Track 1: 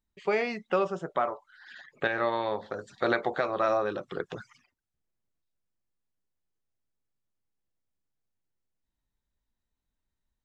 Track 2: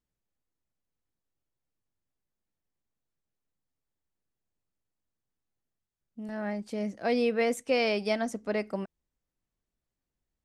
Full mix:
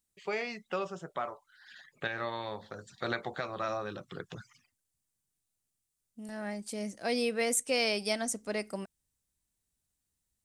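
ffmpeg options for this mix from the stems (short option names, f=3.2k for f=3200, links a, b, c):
-filter_complex "[0:a]highpass=81,asubboost=boost=4:cutoff=200,volume=-8dB[a];[1:a]equalizer=f=8.9k:w=1.3:g=10,volume=-5dB[b];[a][b]amix=inputs=2:normalize=0,highshelf=f=3.2k:g=11"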